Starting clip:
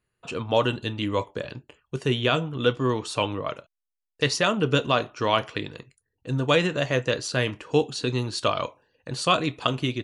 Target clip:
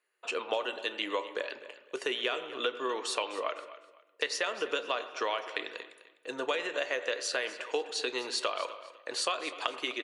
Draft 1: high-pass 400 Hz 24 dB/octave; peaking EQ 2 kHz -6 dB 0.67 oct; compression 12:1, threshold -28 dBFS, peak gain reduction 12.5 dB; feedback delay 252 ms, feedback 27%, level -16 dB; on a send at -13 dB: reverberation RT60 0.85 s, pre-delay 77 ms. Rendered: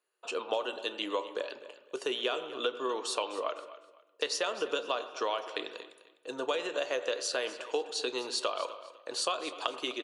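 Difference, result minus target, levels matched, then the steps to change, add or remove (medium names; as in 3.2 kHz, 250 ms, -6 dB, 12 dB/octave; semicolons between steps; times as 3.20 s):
2 kHz band -4.0 dB
change: peaking EQ 2 kHz +4.5 dB 0.67 oct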